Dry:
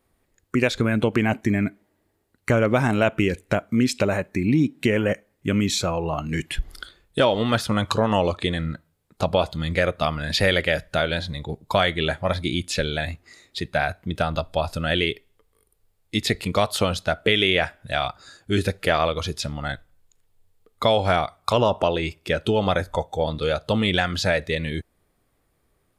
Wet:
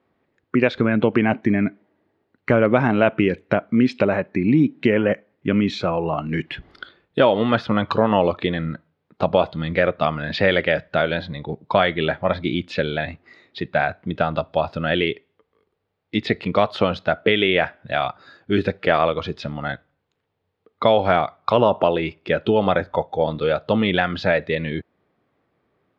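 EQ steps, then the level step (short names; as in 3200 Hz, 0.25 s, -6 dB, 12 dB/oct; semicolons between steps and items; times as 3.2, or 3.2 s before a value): HPF 150 Hz 12 dB/oct; LPF 7600 Hz 12 dB/oct; air absorption 310 m; +4.5 dB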